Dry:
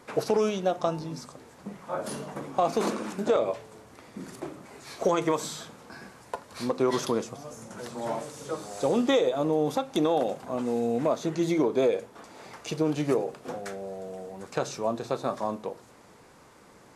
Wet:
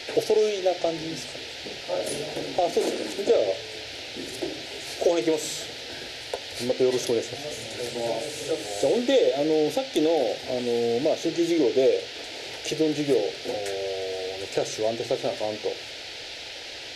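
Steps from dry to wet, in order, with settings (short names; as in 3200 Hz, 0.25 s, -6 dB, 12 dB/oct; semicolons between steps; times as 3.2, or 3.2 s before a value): low shelf 410 Hz +3 dB; in parallel at +3 dB: compressor, threshold -32 dBFS, peak gain reduction 13.5 dB; on the sum: band noise 550–4700 Hz -36 dBFS; fixed phaser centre 460 Hz, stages 4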